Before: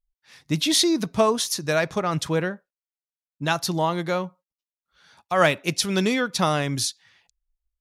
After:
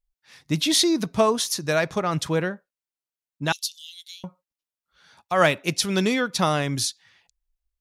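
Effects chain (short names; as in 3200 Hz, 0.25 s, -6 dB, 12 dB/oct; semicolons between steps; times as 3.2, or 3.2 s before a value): 3.52–4.24 steep high-pass 2900 Hz 48 dB/oct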